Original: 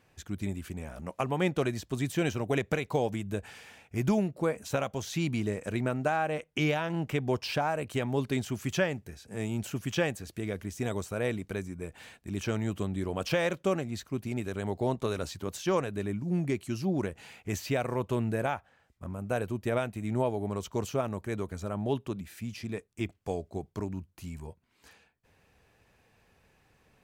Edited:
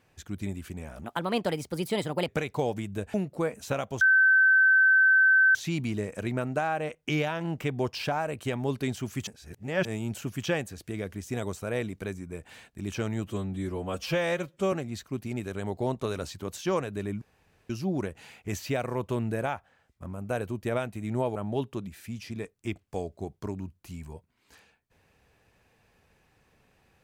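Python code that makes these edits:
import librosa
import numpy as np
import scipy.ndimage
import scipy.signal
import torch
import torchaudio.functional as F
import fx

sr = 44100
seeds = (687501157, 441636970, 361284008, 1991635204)

y = fx.edit(x, sr, fx.speed_span(start_s=1.04, length_s=1.6, speed=1.29),
    fx.cut(start_s=3.5, length_s=0.67),
    fx.insert_tone(at_s=5.04, length_s=1.54, hz=1540.0, db=-16.5),
    fx.reverse_span(start_s=8.76, length_s=0.58),
    fx.stretch_span(start_s=12.76, length_s=0.97, factor=1.5),
    fx.room_tone_fill(start_s=16.22, length_s=0.48),
    fx.cut(start_s=20.36, length_s=1.33), tone=tone)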